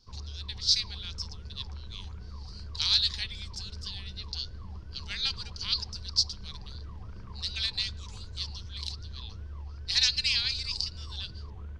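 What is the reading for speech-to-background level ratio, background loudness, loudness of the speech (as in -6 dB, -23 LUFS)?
14.5 dB, -44.5 LUFS, -30.0 LUFS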